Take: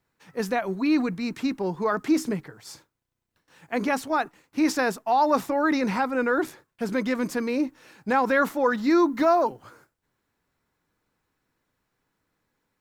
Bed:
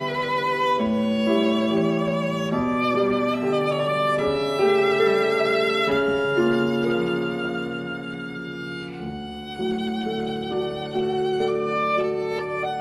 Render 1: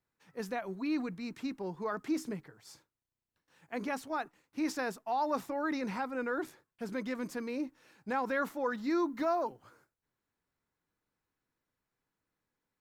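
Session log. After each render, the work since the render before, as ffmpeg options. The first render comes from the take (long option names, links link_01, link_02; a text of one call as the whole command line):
ffmpeg -i in.wav -af "volume=-11dB" out.wav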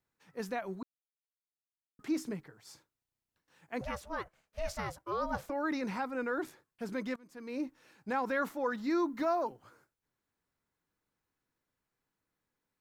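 ffmpeg -i in.wav -filter_complex "[0:a]asettb=1/sr,asplit=3[link_01][link_02][link_03];[link_01]atrim=end=3.814[link_04];[link_02]atrim=start=3.81:end=5.5,asetpts=PTS-STARTPTS,afade=type=in:duration=0.004:curve=qsin,afade=type=out:start_time=1.686:duration=0.004:curve=qsin,aeval=exprs='val(0)*sin(2*PI*330*n/s)':channel_layout=same[link_05];[link_03]atrim=start=5.496[link_06];[link_04][link_05]acrossfade=duration=0.004:curve1=hsin:curve2=qsin[link_07];[link_07][link_06]acrossfade=duration=0.004:curve1=qsin:curve2=hsin,asplit=4[link_08][link_09][link_10][link_11];[link_08]atrim=end=0.83,asetpts=PTS-STARTPTS,afade=type=out:start_time=0.826:duration=0.004:curve=hsin[link_12];[link_09]atrim=start=0.83:end=1.99,asetpts=PTS-STARTPTS,volume=0[link_13];[link_10]atrim=start=1.99:end=7.16,asetpts=PTS-STARTPTS,afade=type=in:duration=0.004:curve=hsin,afade=type=out:start_time=5.166:duration=0.004:curve=hsin:silence=0.0749894[link_14];[link_11]atrim=start=7.16,asetpts=PTS-STARTPTS,afade=type=in:duration=0.43:curve=qua:silence=0.0749894[link_15];[link_12][link_13][link_14][link_15]concat=n=4:v=0:a=1" out.wav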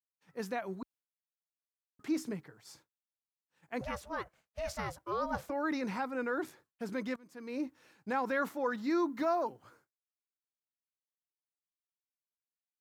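ffmpeg -i in.wav -af "highpass=43,agate=range=-33dB:threshold=-59dB:ratio=3:detection=peak" out.wav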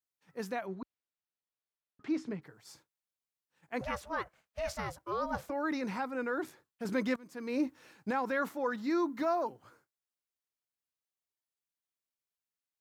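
ffmpeg -i in.wav -filter_complex "[0:a]asettb=1/sr,asplit=3[link_01][link_02][link_03];[link_01]atrim=end=0.664[link_04];[link_02]atrim=start=0.66:end=2.42,asetpts=PTS-STARTPTS,afade=type=in:duration=0.004:curve=qsin,afade=type=out:start_time=1.756:duration=0.004:curve=qsin,lowpass=4000[link_05];[link_03]atrim=start=2.416[link_06];[link_04][link_05]acrossfade=duration=0.004:curve1=hsin:curve2=qsin[link_07];[link_07][link_06]acrossfade=duration=0.004:curve1=qsin:curve2=hsin,asettb=1/sr,asplit=3[link_08][link_09][link_10];[link_08]atrim=end=3.744[link_11];[link_09]atrim=start=3.74:end=4.74,asetpts=PTS-STARTPTS,afade=type=in:duration=0.004:curve=qsin,afade=type=out:start_time=0.996:duration=0.004:curve=qsin,equalizer=frequency=1500:width=0.45:gain=3.5[link_12];[link_10]atrim=start=4.736[link_13];[link_11][link_12]acrossfade=duration=0.004:curve1=hsin:curve2=qsin[link_14];[link_14][link_13]acrossfade=duration=0.004:curve1=qsin:curve2=hsin,asettb=1/sr,asplit=3[link_15][link_16][link_17];[link_15]atrim=end=6.854[link_18];[link_16]atrim=start=6.85:end=8.11,asetpts=PTS-STARTPTS,afade=type=in:duration=0.004:curve=qsin,afade=type=out:start_time=1.256:duration=0.004:curve=qsin,acontrast=28[link_19];[link_17]atrim=start=8.106[link_20];[link_18][link_19]acrossfade=duration=0.004:curve1=hsin:curve2=qsin[link_21];[link_21][link_20]acrossfade=duration=0.004:curve1=qsin:curve2=hsin" out.wav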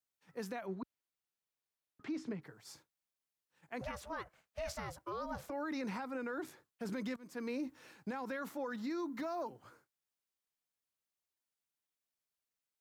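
ffmpeg -i in.wav -filter_complex "[0:a]acrossover=split=240|3000[link_01][link_02][link_03];[link_02]acompressor=threshold=-34dB:ratio=6[link_04];[link_01][link_04][link_03]amix=inputs=3:normalize=0,alimiter=level_in=8.5dB:limit=-24dB:level=0:latency=1:release=118,volume=-8.5dB" out.wav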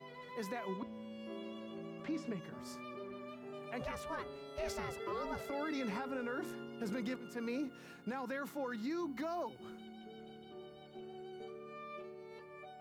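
ffmpeg -i in.wav -i bed.wav -filter_complex "[1:a]volume=-26dB[link_01];[0:a][link_01]amix=inputs=2:normalize=0" out.wav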